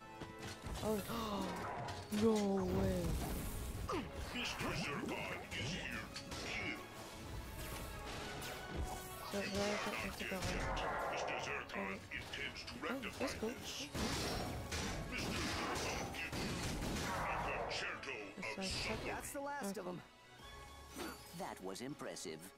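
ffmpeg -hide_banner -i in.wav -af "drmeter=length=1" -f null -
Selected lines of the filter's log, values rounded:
Channel 1: DR: 10.6
Overall DR: 10.6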